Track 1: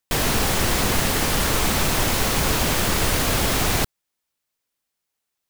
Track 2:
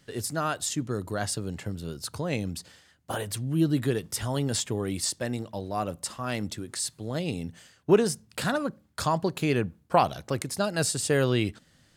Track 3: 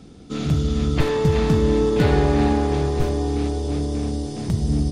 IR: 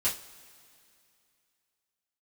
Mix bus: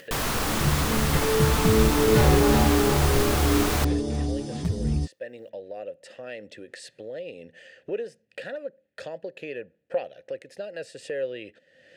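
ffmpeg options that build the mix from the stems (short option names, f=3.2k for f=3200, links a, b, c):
-filter_complex "[0:a]equalizer=f=1.2k:t=o:w=0.77:g=5,volume=-6.5dB[a];[1:a]asplit=3[b][c][d];[b]bandpass=f=530:t=q:w=8,volume=0dB[e];[c]bandpass=f=1.84k:t=q:w=8,volume=-6dB[f];[d]bandpass=f=2.48k:t=q:w=8,volume=-9dB[g];[e][f][g]amix=inputs=3:normalize=0,volume=1.5dB[h];[2:a]dynaudnorm=f=300:g=9:m=11.5dB,asplit=2[i][j];[j]adelay=7.1,afreqshift=2.6[k];[i][k]amix=inputs=2:normalize=1,adelay=150,volume=-3dB[l];[a][h][l]amix=inputs=3:normalize=0,acompressor=mode=upward:threshold=-30dB:ratio=2.5"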